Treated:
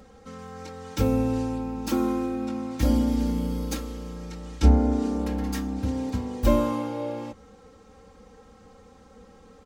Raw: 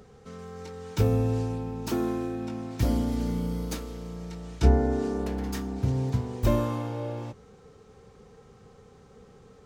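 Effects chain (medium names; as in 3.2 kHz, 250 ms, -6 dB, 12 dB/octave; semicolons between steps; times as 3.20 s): comb 3.7 ms, depth 93%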